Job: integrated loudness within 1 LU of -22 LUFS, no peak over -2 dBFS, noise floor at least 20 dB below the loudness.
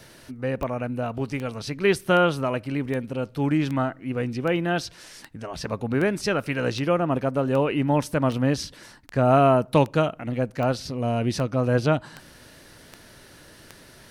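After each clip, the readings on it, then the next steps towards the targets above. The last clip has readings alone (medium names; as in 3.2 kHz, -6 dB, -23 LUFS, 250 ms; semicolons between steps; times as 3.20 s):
clicks found 18; loudness -24.5 LUFS; peak level -6.0 dBFS; loudness target -22.0 LUFS
-> de-click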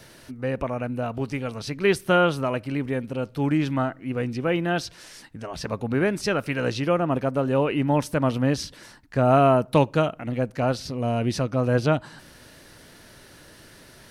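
clicks found 0; loudness -24.5 LUFS; peak level -6.0 dBFS; loudness target -22.0 LUFS
-> trim +2.5 dB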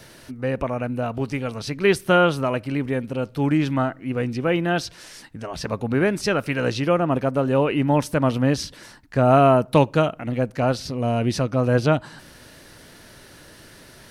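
loudness -22.0 LUFS; peak level -3.5 dBFS; noise floor -47 dBFS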